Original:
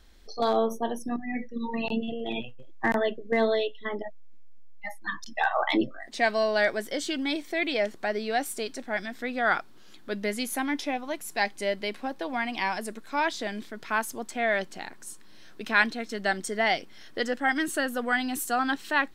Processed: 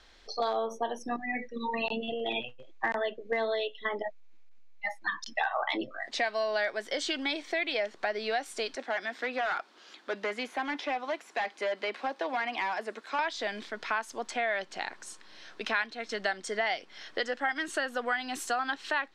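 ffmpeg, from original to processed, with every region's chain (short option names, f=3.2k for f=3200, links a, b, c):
-filter_complex "[0:a]asettb=1/sr,asplit=3[a][b][c];[a]atrim=end=8.754[d];[b]atrim=start=8.75:end=13.19,asetpts=PTS-STARTPTS,afade=t=in:d=0.004:c=qsin,afade=t=out:st=4.436:d=0.004:c=qsin,highpass=f=230:w=0.5412,highpass=f=230:w=1.3066,asoftclip=type=hard:threshold=-27dB,acrossover=split=3000[e][f];[f]acompressor=threshold=-51dB:ratio=4:attack=1:release=60[g];[e][g]amix=inputs=2:normalize=0[h];[c]atrim=start=13.186[i];[d][h]acrossfade=d=0.004:c1=hsin:c2=qsin[j];[j][i]acrossfade=d=0.004:c1=qsin:c2=hsin,lowpass=11k,acrossover=split=440 6700:gain=0.224 1 0.141[k][l][m];[k][l][m]amix=inputs=3:normalize=0,acompressor=threshold=-34dB:ratio=4,volume=5.5dB"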